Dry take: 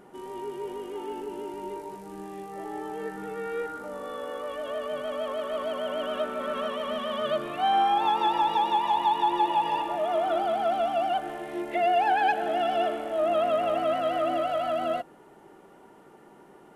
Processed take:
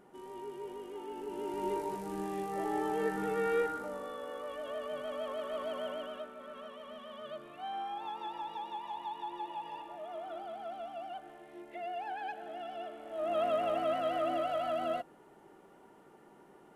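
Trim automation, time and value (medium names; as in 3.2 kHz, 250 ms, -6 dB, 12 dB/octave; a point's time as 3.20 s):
1.11 s -8 dB
1.68 s +2 dB
3.54 s +2 dB
4.17 s -7 dB
5.85 s -7 dB
6.34 s -16.5 dB
12.93 s -16.5 dB
13.42 s -6 dB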